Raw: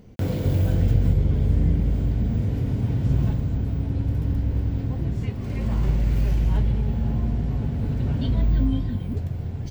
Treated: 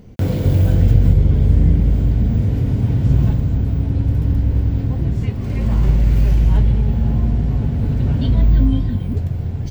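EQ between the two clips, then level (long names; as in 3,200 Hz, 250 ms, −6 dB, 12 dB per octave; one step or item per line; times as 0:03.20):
low-shelf EQ 160 Hz +3.5 dB
+4.5 dB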